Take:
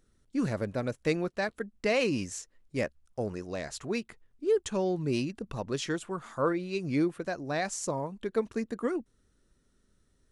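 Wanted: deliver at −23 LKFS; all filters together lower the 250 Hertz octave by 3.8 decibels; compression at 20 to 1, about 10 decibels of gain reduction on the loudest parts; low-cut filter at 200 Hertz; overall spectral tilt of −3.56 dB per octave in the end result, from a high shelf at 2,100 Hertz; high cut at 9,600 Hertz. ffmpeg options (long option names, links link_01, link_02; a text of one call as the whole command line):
ffmpeg -i in.wav -af "highpass=200,lowpass=9600,equalizer=frequency=250:width_type=o:gain=-3.5,highshelf=frequency=2100:gain=3,acompressor=threshold=-32dB:ratio=20,volume=15.5dB" out.wav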